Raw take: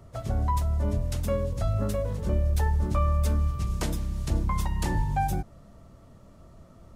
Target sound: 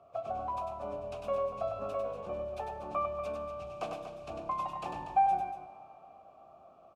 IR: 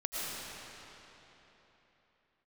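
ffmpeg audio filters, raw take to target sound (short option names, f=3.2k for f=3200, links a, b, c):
-filter_complex "[0:a]asplit=3[a][b][c];[a]bandpass=f=730:t=q:w=8,volume=0dB[d];[b]bandpass=f=1.09k:t=q:w=8,volume=-6dB[e];[c]bandpass=f=2.44k:t=q:w=8,volume=-9dB[f];[d][e][f]amix=inputs=3:normalize=0,aecho=1:1:99.13|239.1:0.562|0.316,asplit=2[g][h];[1:a]atrim=start_sample=2205[i];[h][i]afir=irnorm=-1:irlink=0,volume=-20dB[j];[g][j]amix=inputs=2:normalize=0,volume=6.5dB"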